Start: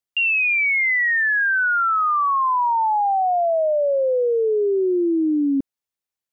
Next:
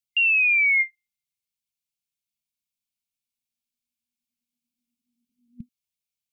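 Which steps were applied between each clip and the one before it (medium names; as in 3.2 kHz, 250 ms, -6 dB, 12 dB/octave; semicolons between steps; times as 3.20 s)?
FFT band-reject 240–2100 Hz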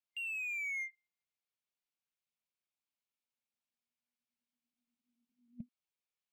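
peak limiter -21.5 dBFS, peak gain reduction 6.5 dB; overdrive pedal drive 17 dB, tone 1.1 kHz, clips at -21.5 dBFS; trim -7.5 dB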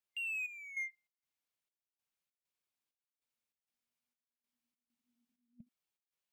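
trance gate "xxx..xx." 98 bpm -12 dB; trim +1 dB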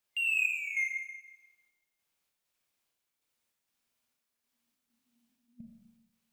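Schroeder reverb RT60 1.1 s, combs from 27 ms, DRR 1 dB; trim +7.5 dB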